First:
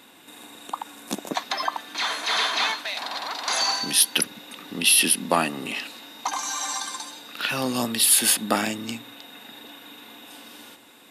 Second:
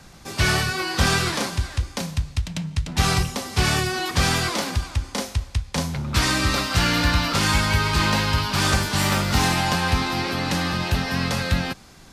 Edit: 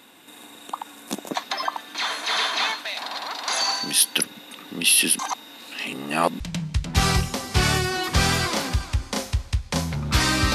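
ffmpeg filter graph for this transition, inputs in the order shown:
ffmpeg -i cue0.wav -i cue1.wav -filter_complex "[0:a]apad=whole_dur=10.54,atrim=end=10.54,asplit=2[link_01][link_02];[link_01]atrim=end=5.192[link_03];[link_02]atrim=start=5.188:end=6.402,asetpts=PTS-STARTPTS,areverse[link_04];[1:a]atrim=start=2.418:end=6.56[link_05];[link_03][link_04]acrossfade=duration=0.004:curve1=hsin:curve2=hsin[link_06];[link_06][link_05]acrossfade=duration=0.004:curve1=hsin:curve2=hsin" out.wav

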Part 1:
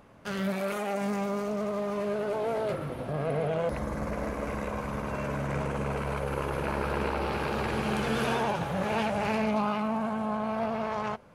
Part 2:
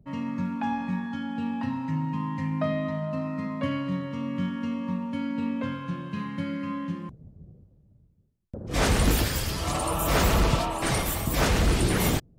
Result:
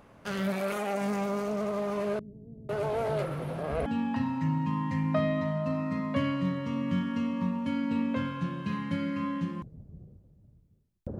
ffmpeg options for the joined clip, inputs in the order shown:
ffmpeg -i cue0.wav -i cue1.wav -filter_complex "[0:a]asettb=1/sr,asplit=3[link_01][link_02][link_03];[link_01]atrim=end=2.194[link_04];[link_02]atrim=start=2.19:end=3.86,asetpts=PTS-STARTPTS,afade=type=in:duration=0.004:curve=qsin,afade=type=out:start_time=1.666:duration=0.004:curve=qsin,acrossover=split=220[link_05][link_06];[link_06]adelay=500[link_07];[link_05][link_07]amix=inputs=2:normalize=0,atrim=end_sample=73647[link_08];[link_03]atrim=start=3.856[link_09];[link_04][link_08]acrossfade=duration=0.004:curve1=hsin:curve2=qsin[link_10];[link_10][link_09]acrossfade=duration=0.004:curve1=qsin:curve2=hsin,apad=whole_dur=11.19,atrim=end=11.19,atrim=end=3.862[link_11];[1:a]atrim=start=1.328:end=8.66[link_12];[link_11][link_12]acrossfade=duration=0.004:curve1=hsin:curve2=hsin" out.wav

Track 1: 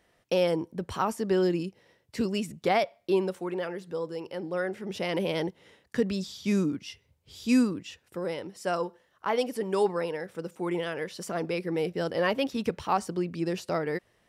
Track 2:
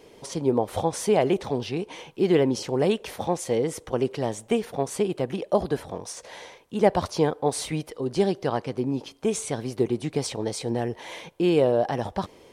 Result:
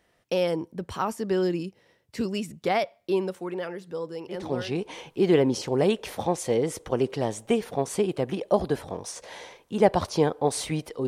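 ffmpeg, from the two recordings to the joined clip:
ffmpeg -i cue0.wav -i cue1.wav -filter_complex "[0:a]apad=whole_dur=11.07,atrim=end=11.07,atrim=end=4.78,asetpts=PTS-STARTPTS[link_01];[1:a]atrim=start=1.27:end=8.08,asetpts=PTS-STARTPTS[link_02];[link_01][link_02]acrossfade=duration=0.52:curve1=qsin:curve2=qsin" out.wav

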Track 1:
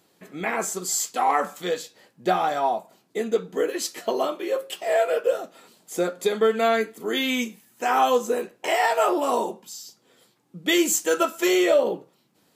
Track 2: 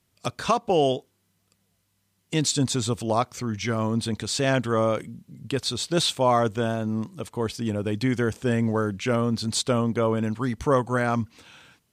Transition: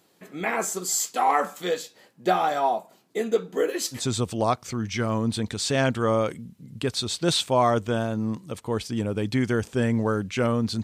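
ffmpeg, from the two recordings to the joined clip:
ffmpeg -i cue0.wav -i cue1.wav -filter_complex "[0:a]apad=whole_dur=10.83,atrim=end=10.83,atrim=end=4.07,asetpts=PTS-STARTPTS[link_01];[1:a]atrim=start=2.6:end=9.52,asetpts=PTS-STARTPTS[link_02];[link_01][link_02]acrossfade=duration=0.16:curve1=tri:curve2=tri" out.wav

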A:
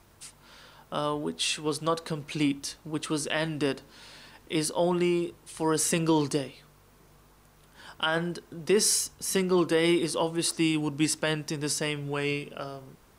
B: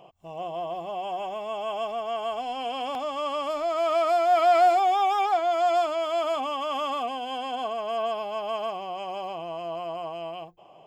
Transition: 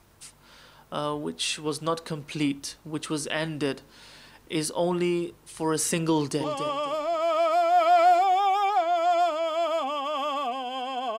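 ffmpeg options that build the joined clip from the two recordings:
ffmpeg -i cue0.wav -i cue1.wav -filter_complex "[0:a]apad=whole_dur=11.18,atrim=end=11.18,atrim=end=6.442[link_01];[1:a]atrim=start=2.998:end=7.74[link_02];[link_01][link_02]acrossfade=duration=0.004:curve1=hsin:curve2=hsin,asplit=2[link_03][link_04];[link_04]afade=type=in:start_time=6.14:duration=0.01,afade=type=out:start_time=6.44:duration=0.01,aecho=0:1:260|520|780:0.398107|0.0995268|0.0248817[link_05];[link_03][link_05]amix=inputs=2:normalize=0" out.wav

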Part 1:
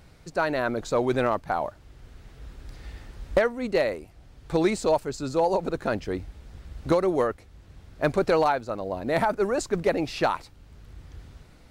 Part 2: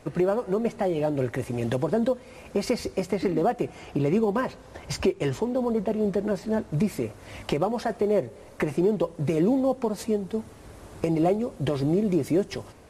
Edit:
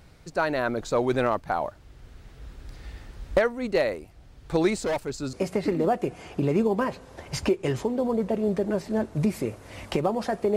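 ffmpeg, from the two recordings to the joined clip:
ffmpeg -i cue0.wav -i cue1.wav -filter_complex "[0:a]asettb=1/sr,asplit=3[link_01][link_02][link_03];[link_01]atrim=end=4.784[link_04];[link_02]atrim=start=4.78:end=5.33,asetpts=PTS-STARTPTS,afade=type=in:duration=0.004:curve=qsin,afade=type=out:start_time=0.546:duration=0.004:curve=qsin,volume=23.5dB,asoftclip=hard,volume=-23.5dB[link_05];[link_03]atrim=start=5.326[link_06];[link_04][link_05]acrossfade=duration=0.004:curve1=hsin:curve2=qsin[link_07];[link_07][link_06]acrossfade=duration=0.004:curve1=qsin:curve2=hsin,apad=whole_dur=10.56,atrim=end=10.56,atrim=end=5.332[link_08];[1:a]atrim=start=2.898:end=8.13[link_09];[link_08][link_09]acrossfade=duration=0.004:curve1=hsin:curve2=hsin" out.wav

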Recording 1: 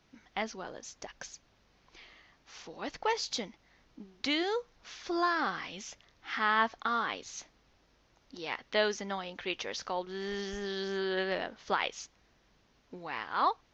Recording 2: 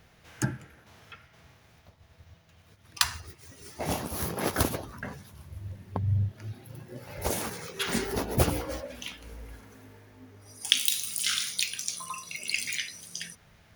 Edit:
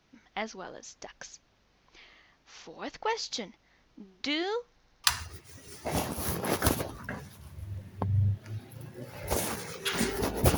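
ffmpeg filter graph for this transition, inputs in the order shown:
ffmpeg -i cue0.wav -i cue1.wav -filter_complex "[0:a]apad=whole_dur=10.57,atrim=end=10.57,asplit=4[link_01][link_02][link_03][link_04];[link_01]atrim=end=4.802[link_05];[link_02]atrim=start=4.718:end=4.802[link_06];[link_03]atrim=start=4.718:end=4.802[link_07];[link_04]atrim=start=4.718:end=4.802[link_08];[1:a]atrim=start=2.978:end=8.51[link_09];[link_05][link_06]acrossfade=duration=0.004:curve1=hsin:curve2=hsin[link_10];[link_10][link_07]acrossfade=duration=0.004:curve1=hsin:curve2=hsin[link_11];[link_11][link_08]acrossfade=duration=0.004:curve1=hsin:curve2=hsin[link_12];[link_12][link_09]acrossfade=duration=0.004:curve1=hsin:curve2=hsin" out.wav

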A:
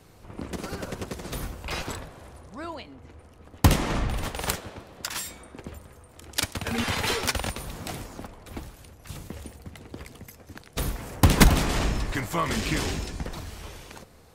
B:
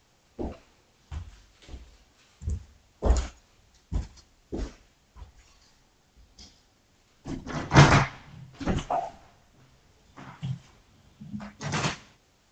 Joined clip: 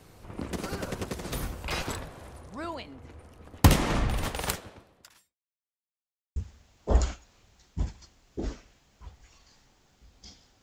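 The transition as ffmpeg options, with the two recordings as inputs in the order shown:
ffmpeg -i cue0.wav -i cue1.wav -filter_complex "[0:a]apad=whole_dur=10.62,atrim=end=10.62,asplit=2[link_01][link_02];[link_01]atrim=end=5.37,asetpts=PTS-STARTPTS,afade=type=out:start_time=4.35:duration=1.02:curve=qua[link_03];[link_02]atrim=start=5.37:end=6.36,asetpts=PTS-STARTPTS,volume=0[link_04];[1:a]atrim=start=2.51:end=6.77,asetpts=PTS-STARTPTS,afade=type=in:duration=0.004:curve=hsin[link_05];[link_03][link_04][link_05]concat=n=3:v=0:a=1" out.wav

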